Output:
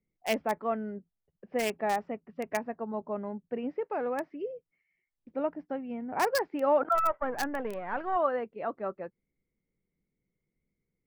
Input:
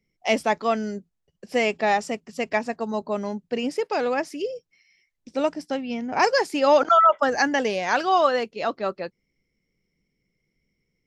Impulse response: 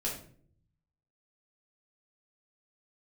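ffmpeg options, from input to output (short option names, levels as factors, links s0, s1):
-filter_complex "[0:a]asplit=3[s0][s1][s2];[s0]afade=t=out:st=6.94:d=0.02[s3];[s1]aeval=exprs='if(lt(val(0),0),0.447*val(0),val(0))':c=same,afade=t=in:st=6.94:d=0.02,afade=t=out:st=8.15:d=0.02[s4];[s2]afade=t=in:st=8.15:d=0.02[s5];[s3][s4][s5]amix=inputs=3:normalize=0,acrossover=split=2000[s6][s7];[s7]acrusher=bits=3:mix=0:aa=0.000001[s8];[s6][s8]amix=inputs=2:normalize=0,volume=0.422"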